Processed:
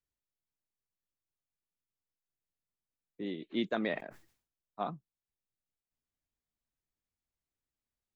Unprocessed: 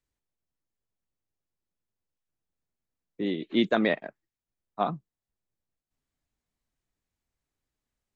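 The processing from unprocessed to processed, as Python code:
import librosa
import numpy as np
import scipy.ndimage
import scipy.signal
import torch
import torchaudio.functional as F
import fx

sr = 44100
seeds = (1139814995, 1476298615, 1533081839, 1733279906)

y = fx.sustainer(x, sr, db_per_s=120.0, at=(3.75, 4.9))
y = y * 10.0 ** (-9.0 / 20.0)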